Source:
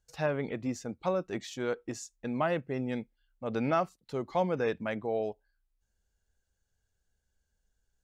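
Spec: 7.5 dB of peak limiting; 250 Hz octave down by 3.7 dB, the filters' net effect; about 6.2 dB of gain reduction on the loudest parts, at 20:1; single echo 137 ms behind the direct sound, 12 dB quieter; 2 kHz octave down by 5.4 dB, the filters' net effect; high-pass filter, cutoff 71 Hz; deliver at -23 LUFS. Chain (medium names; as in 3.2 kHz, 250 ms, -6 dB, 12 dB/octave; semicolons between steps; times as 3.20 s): high-pass 71 Hz; peaking EQ 250 Hz -4.5 dB; peaking EQ 2 kHz -7.5 dB; compression 20:1, threshold -31 dBFS; peak limiter -30 dBFS; delay 137 ms -12 dB; trim +17.5 dB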